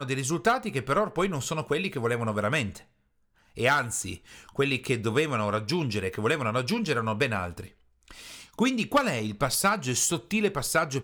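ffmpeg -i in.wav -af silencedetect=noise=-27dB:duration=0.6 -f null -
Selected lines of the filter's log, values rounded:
silence_start: 2.67
silence_end: 3.59 | silence_duration: 0.92
silence_start: 7.60
silence_end: 8.59 | silence_duration: 0.99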